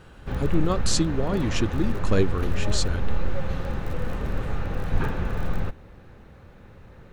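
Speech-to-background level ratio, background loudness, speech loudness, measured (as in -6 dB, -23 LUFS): 4.0 dB, -31.0 LUFS, -27.0 LUFS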